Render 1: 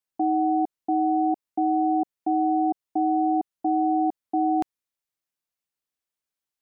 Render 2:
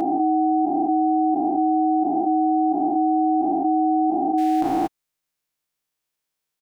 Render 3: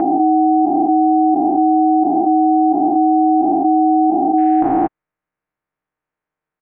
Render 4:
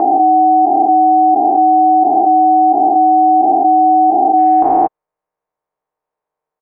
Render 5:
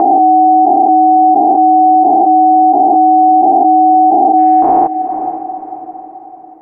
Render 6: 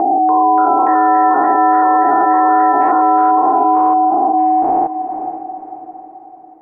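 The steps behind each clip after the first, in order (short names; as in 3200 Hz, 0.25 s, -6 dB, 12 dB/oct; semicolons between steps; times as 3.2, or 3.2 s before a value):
spectral dilation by 0.48 s; comb 6.5 ms, depth 43%
LPF 1900 Hz 24 dB/oct; gain +6.5 dB
band shelf 660 Hz +12 dB; gain -5.5 dB
diffused feedback echo 0.483 s, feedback 47%, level -15.5 dB; maximiser +9.5 dB; gain -1 dB
echoes that change speed 0.289 s, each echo +5 st, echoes 3, each echo -6 dB; gain -5 dB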